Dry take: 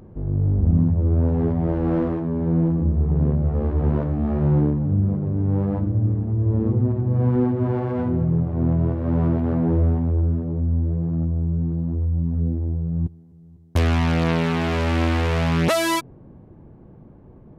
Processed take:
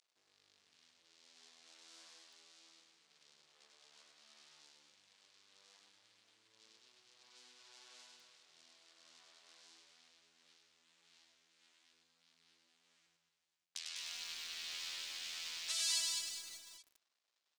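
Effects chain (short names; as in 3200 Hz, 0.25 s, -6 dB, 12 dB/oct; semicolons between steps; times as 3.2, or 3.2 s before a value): compressor 3:1, threshold -27 dBFS, peak gain reduction 11 dB; crossover distortion -44.5 dBFS; Butterworth band-pass 6000 Hz, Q 1.2; reverse bouncing-ball echo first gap 0.1 s, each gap 1.25×, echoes 5; lo-fi delay 0.201 s, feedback 35%, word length 9-bit, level -4 dB; gain +2.5 dB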